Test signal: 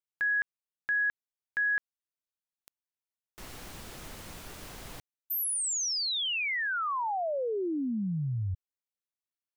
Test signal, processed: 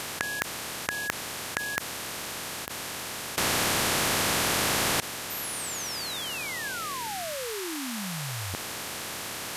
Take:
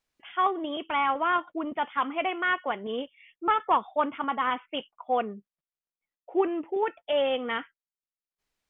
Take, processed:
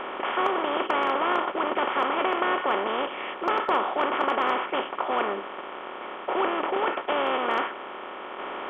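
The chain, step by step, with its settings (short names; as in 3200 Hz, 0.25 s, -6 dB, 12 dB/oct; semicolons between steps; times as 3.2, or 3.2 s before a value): per-bin compression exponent 0.2; overloaded stage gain 5.5 dB; gain -7.5 dB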